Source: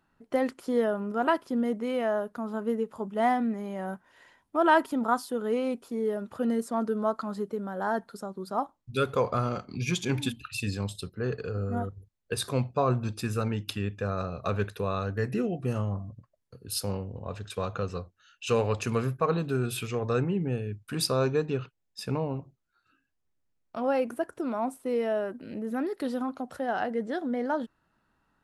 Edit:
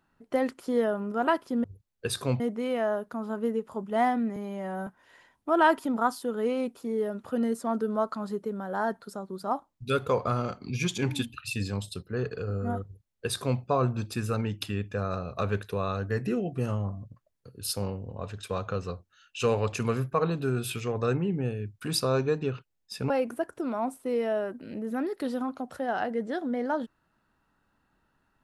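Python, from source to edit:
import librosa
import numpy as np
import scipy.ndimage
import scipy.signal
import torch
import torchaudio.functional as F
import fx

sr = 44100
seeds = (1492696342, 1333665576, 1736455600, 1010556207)

y = fx.edit(x, sr, fx.stretch_span(start_s=3.6, length_s=0.34, factor=1.5),
    fx.duplicate(start_s=11.91, length_s=0.76, to_s=1.64),
    fx.cut(start_s=22.17, length_s=1.73), tone=tone)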